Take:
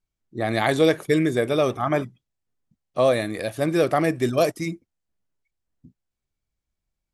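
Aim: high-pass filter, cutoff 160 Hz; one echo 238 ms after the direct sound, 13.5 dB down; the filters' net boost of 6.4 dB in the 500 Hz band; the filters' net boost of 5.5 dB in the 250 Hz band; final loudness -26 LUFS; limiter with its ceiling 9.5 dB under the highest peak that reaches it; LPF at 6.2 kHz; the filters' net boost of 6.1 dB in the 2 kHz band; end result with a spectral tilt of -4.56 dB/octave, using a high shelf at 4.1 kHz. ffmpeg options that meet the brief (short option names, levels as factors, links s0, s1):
-af "highpass=160,lowpass=6200,equalizer=f=250:t=o:g=5.5,equalizer=f=500:t=o:g=6,equalizer=f=2000:t=o:g=6,highshelf=f=4100:g=4.5,alimiter=limit=0.316:level=0:latency=1,aecho=1:1:238:0.211,volume=0.562"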